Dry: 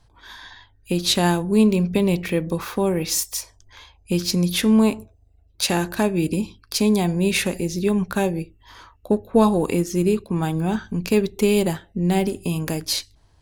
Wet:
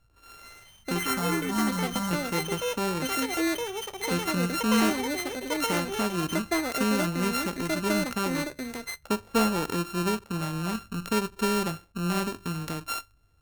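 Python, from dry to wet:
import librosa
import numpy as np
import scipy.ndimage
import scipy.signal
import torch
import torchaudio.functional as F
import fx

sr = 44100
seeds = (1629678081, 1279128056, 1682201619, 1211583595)

y = np.r_[np.sort(x[:len(x) // 32 * 32].reshape(-1, 32), axis=1).ravel(), x[len(x) // 32 * 32:]]
y = fx.fixed_phaser(y, sr, hz=1000.0, stages=4, at=(1.07, 2.11))
y = fx.echo_pitch(y, sr, ms=275, semitones=7, count=2, db_per_echo=-3.0)
y = y * 10.0 ** (-8.0 / 20.0)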